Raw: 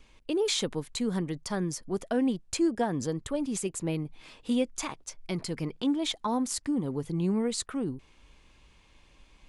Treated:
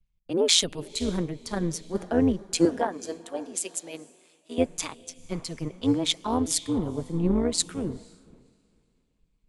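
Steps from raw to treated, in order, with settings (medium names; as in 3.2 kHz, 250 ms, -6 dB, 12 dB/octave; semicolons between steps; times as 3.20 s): AM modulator 170 Hz, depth 60%; 2.65–4.58 s: high-pass 380 Hz 12 dB/octave; echo that smears into a reverb 507 ms, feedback 46%, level -13.5 dB; three bands expanded up and down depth 100%; trim +5 dB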